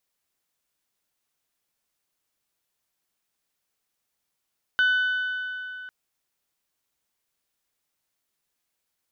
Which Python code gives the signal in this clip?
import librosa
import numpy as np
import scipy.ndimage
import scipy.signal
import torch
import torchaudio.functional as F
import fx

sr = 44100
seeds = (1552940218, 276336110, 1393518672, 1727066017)

y = fx.strike_metal(sr, length_s=1.1, level_db=-17.0, body='bell', hz=1500.0, decay_s=3.27, tilt_db=10.5, modes=5)